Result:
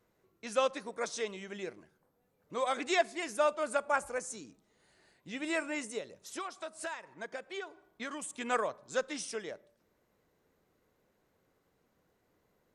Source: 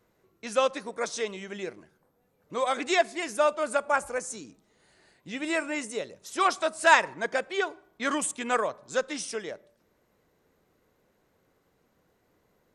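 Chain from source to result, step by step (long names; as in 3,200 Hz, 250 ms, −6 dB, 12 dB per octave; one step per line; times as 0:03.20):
0:05.98–0:08.34: downward compressor 16 to 1, threshold −32 dBFS, peak gain reduction 20 dB
level −5 dB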